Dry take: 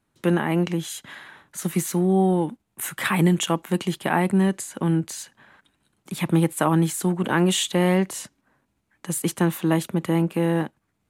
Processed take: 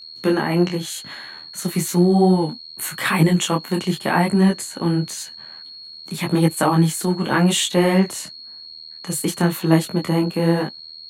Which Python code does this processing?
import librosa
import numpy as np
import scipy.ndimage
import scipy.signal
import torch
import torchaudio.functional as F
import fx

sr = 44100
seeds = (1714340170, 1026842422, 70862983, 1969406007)

y = x + 10.0 ** (-40.0 / 20.0) * np.sin(2.0 * np.pi * 4300.0 * np.arange(len(x)) / sr)
y = fx.detune_double(y, sr, cents=32)
y = F.gain(torch.from_numpy(y), 7.0).numpy()